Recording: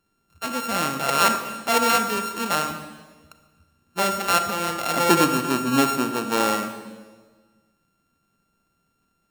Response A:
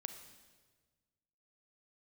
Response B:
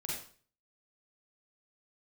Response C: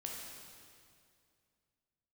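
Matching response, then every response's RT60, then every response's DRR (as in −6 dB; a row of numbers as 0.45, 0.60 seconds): A; 1.5, 0.45, 2.3 seconds; 7.5, −5.0, −2.0 decibels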